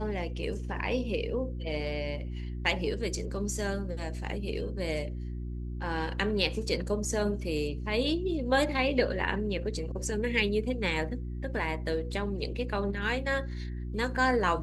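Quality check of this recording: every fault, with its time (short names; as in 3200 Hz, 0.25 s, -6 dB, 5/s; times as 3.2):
hum 60 Hz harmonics 6 -36 dBFS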